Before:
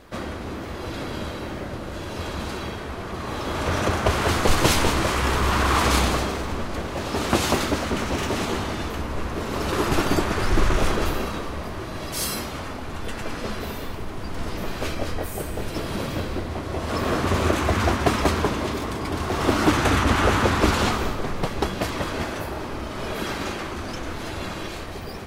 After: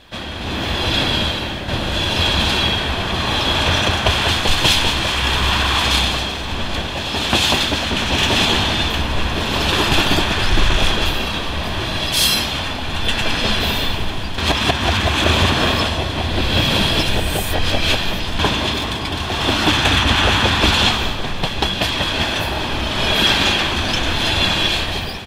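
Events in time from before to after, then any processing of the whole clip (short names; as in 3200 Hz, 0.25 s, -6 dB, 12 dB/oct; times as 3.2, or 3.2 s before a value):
1.04–1.68 fade out linear, to -7.5 dB
14.38–18.39 reverse
whole clip: bell 3300 Hz +14.5 dB 0.93 oct; comb 1.2 ms, depth 31%; AGC; gain -1 dB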